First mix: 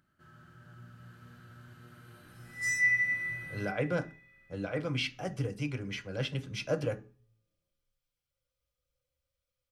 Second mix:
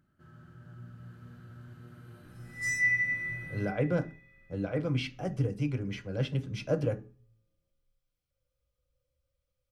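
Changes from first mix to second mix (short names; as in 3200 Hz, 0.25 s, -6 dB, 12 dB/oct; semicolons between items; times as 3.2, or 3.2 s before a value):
second sound +3.5 dB; master: add tilt shelf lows +5 dB, about 740 Hz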